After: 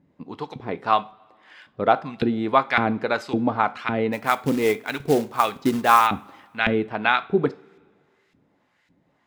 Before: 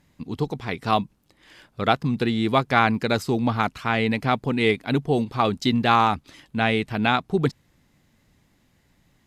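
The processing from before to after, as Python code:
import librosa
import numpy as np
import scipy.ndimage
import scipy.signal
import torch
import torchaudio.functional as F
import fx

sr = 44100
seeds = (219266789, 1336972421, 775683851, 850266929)

y = fx.filter_lfo_bandpass(x, sr, shape='saw_up', hz=1.8, low_hz=250.0, high_hz=2500.0, q=0.96)
y = fx.quant_float(y, sr, bits=2, at=(4.12, 6.06), fade=0.02)
y = fx.rev_double_slope(y, sr, seeds[0], early_s=0.33, late_s=1.9, knee_db=-21, drr_db=11.5)
y = y * 10.0 ** (4.5 / 20.0)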